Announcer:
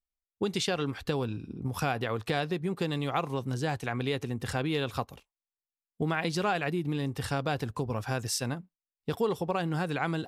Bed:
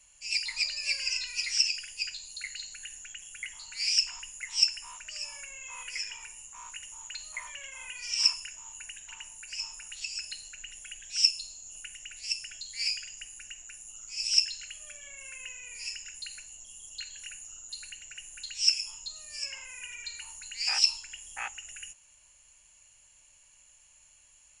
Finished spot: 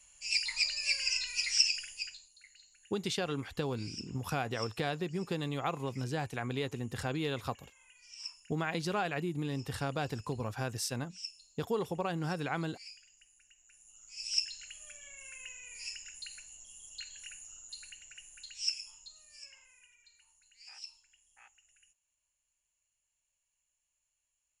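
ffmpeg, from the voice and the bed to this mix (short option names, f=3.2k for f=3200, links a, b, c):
-filter_complex "[0:a]adelay=2500,volume=-4.5dB[a];[1:a]volume=14dB,afade=t=out:st=1.77:d=0.53:silence=0.11885,afade=t=in:st=13.57:d=1.27:silence=0.177828,afade=t=out:st=17.46:d=2.52:silence=0.112202[b];[a][b]amix=inputs=2:normalize=0"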